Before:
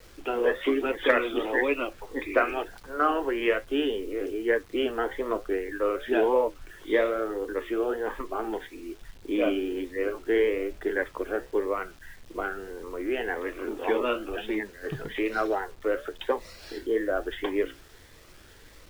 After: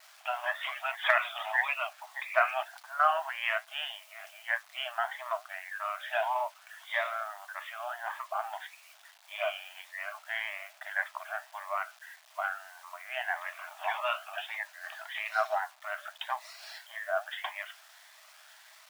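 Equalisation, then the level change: brick-wall FIR high-pass 600 Hz; 0.0 dB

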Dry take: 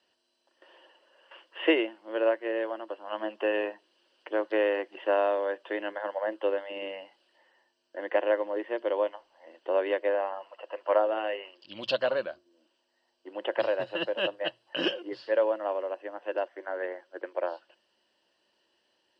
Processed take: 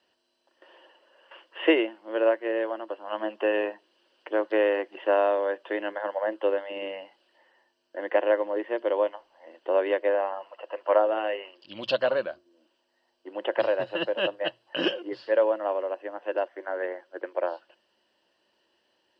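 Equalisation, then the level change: high shelf 3900 Hz -5.5 dB; +3.0 dB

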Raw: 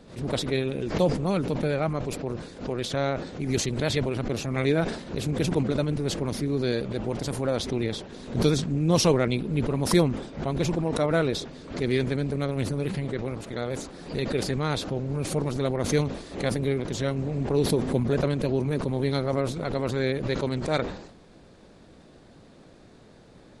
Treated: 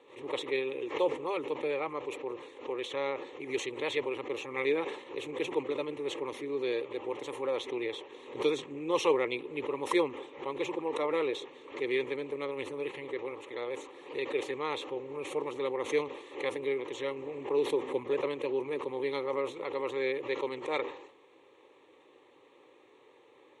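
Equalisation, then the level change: BPF 420–5100 Hz; fixed phaser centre 1000 Hz, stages 8; 0.0 dB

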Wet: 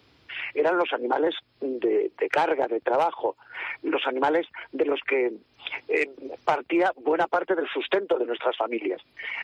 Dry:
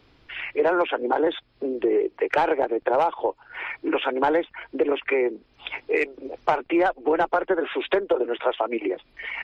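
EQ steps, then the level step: HPF 64 Hz 24 dB/oct; high shelf 4000 Hz +7.5 dB; -2.0 dB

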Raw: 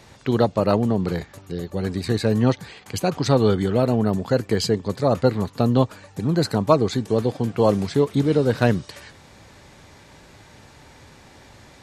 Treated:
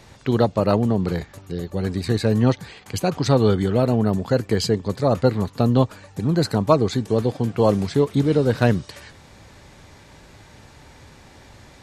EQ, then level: low shelf 79 Hz +6 dB; 0.0 dB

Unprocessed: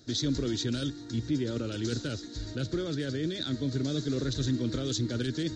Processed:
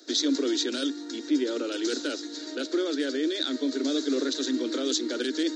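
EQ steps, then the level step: steep high-pass 260 Hz 96 dB/oct; +6.0 dB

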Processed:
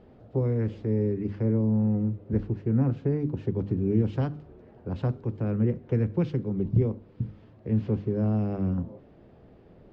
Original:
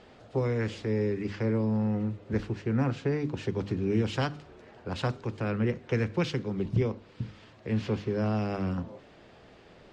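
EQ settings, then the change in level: air absorption 88 m; tilt shelf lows +9.5 dB, about 810 Hz; -4.5 dB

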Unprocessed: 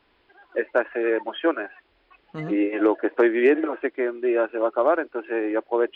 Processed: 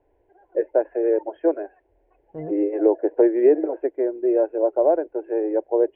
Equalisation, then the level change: Bessel low-pass 920 Hz, order 4; fixed phaser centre 510 Hz, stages 4; +4.5 dB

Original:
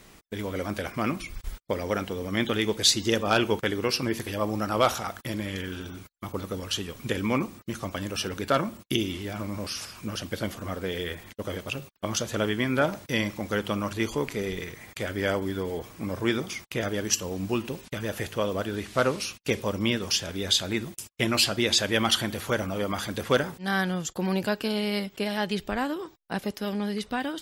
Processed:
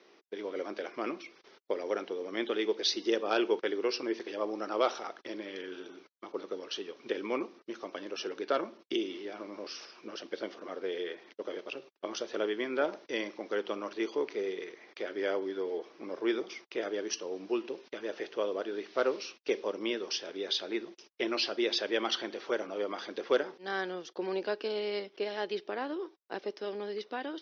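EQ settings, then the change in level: ladder high-pass 320 Hz, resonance 50%; steep low-pass 5900 Hz 96 dB/oct; +1.0 dB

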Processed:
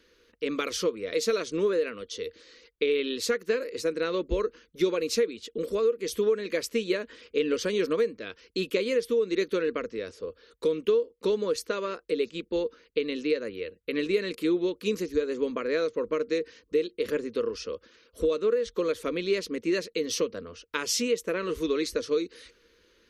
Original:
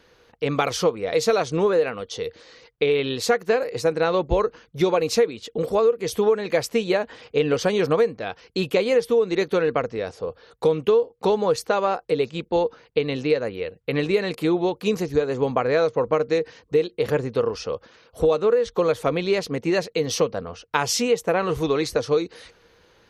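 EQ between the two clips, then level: fixed phaser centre 320 Hz, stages 4; -3.5 dB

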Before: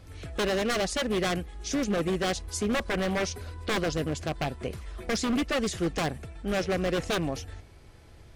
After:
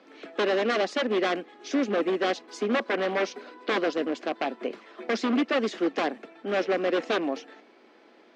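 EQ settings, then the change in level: steep high-pass 230 Hz 48 dB/oct; air absorption 200 m; +4.0 dB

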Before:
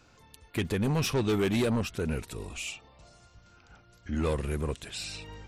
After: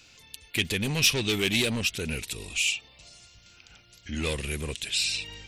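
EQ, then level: resonant high shelf 1800 Hz +12 dB, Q 1.5; -2.0 dB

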